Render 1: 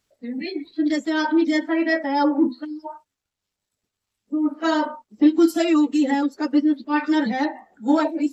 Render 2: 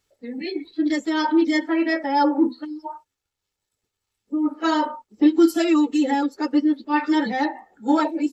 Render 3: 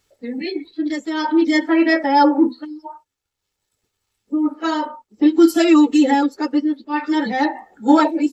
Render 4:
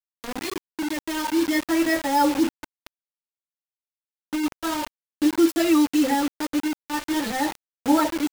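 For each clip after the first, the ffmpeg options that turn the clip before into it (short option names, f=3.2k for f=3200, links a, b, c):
-af "aecho=1:1:2.3:0.37"
-af "tremolo=f=0.51:d=0.59,volume=6.5dB"
-af "acrusher=bits=3:mix=0:aa=0.000001,volume=-6.5dB"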